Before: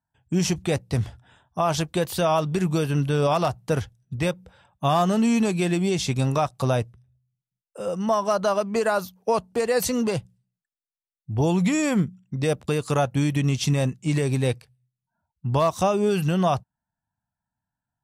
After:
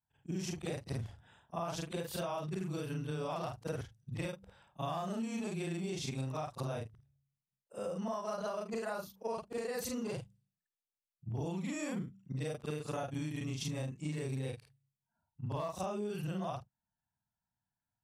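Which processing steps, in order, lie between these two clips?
short-time spectra conjugated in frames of 106 ms; compression 6:1, threshold -32 dBFS, peak gain reduction 13 dB; trim -3.5 dB

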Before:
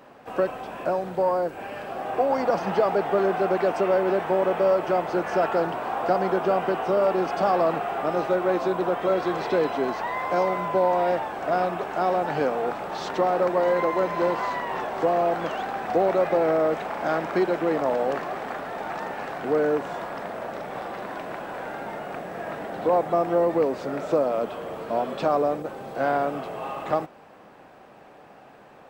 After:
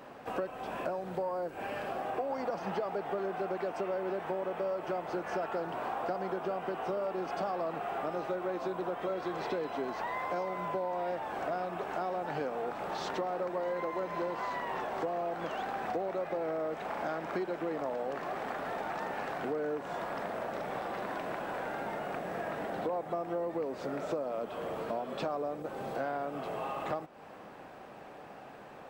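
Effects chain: compression 4:1, threshold -34 dBFS, peak gain reduction 15 dB

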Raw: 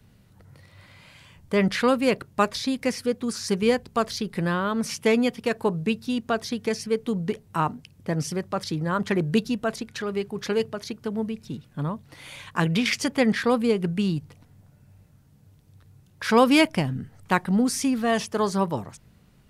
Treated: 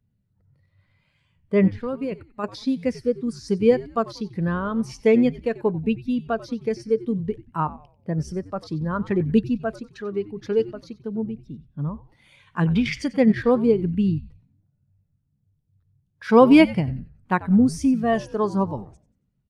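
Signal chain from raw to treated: 1.69–2.44 s: level held to a coarse grid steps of 13 dB; frequency-shifting echo 92 ms, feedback 46%, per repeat -93 Hz, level -12 dB; spectral contrast expander 1.5:1; trim +3 dB

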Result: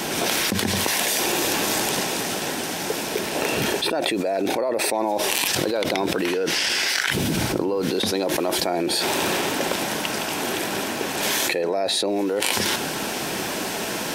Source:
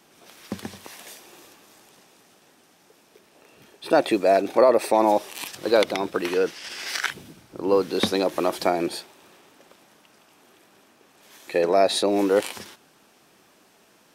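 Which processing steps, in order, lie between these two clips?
band-stop 1.2 kHz, Q 7.8; level flattener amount 100%; trim -9.5 dB

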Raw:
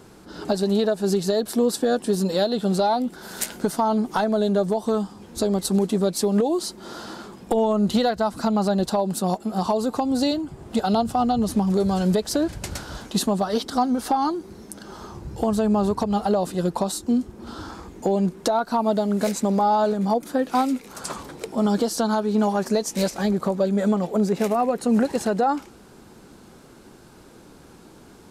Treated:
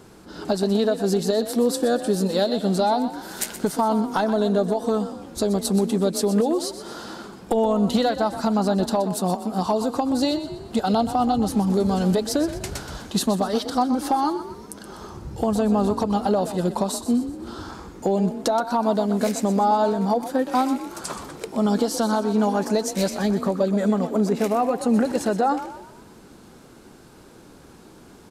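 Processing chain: frequency-shifting echo 124 ms, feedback 45%, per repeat +36 Hz, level -12 dB

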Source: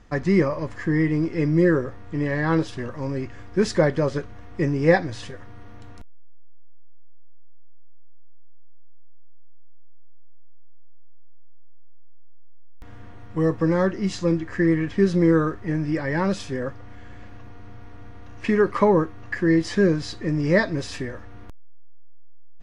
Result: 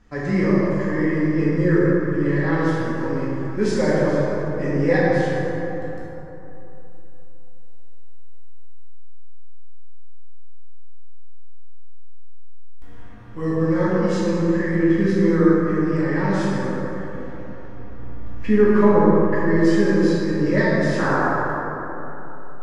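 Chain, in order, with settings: 17.72–19.56 s: tilt EQ -1.5 dB/octave; 20.98–21.22 s: painted sound noise 250–1700 Hz -20 dBFS; plate-style reverb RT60 3.4 s, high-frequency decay 0.4×, DRR -8.5 dB; trim -7 dB

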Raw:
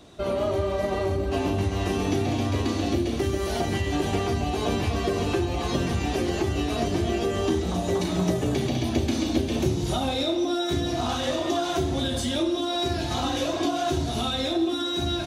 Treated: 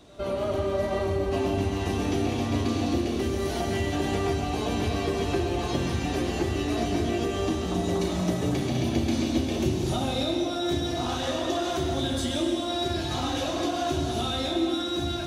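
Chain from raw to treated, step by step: pre-echo 106 ms -22 dB; plate-style reverb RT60 2.1 s, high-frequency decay 0.95×, pre-delay 90 ms, DRR 4 dB; trim -3 dB

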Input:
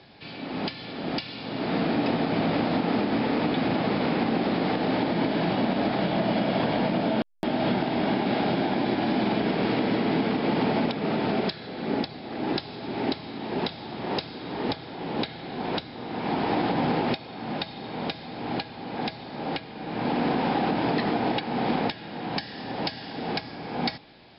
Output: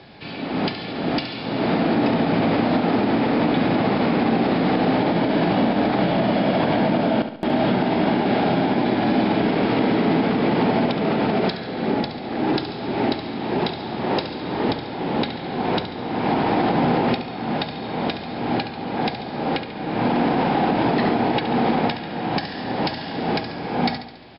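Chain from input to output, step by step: treble shelf 4 kHz -7 dB; peak limiter -19 dBFS, peak gain reduction 4.5 dB; feedback delay 70 ms, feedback 50%, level -10 dB; trim +7.5 dB

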